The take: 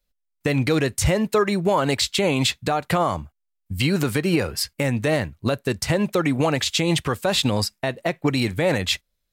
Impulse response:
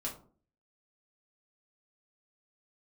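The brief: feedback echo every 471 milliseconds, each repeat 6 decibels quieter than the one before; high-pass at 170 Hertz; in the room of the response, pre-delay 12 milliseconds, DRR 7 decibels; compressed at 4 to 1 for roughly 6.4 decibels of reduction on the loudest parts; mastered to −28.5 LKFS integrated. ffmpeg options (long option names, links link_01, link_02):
-filter_complex "[0:a]highpass=170,acompressor=threshold=-23dB:ratio=4,aecho=1:1:471|942|1413|1884|2355|2826:0.501|0.251|0.125|0.0626|0.0313|0.0157,asplit=2[link_01][link_02];[1:a]atrim=start_sample=2205,adelay=12[link_03];[link_02][link_03]afir=irnorm=-1:irlink=0,volume=-8dB[link_04];[link_01][link_04]amix=inputs=2:normalize=0,volume=-3dB"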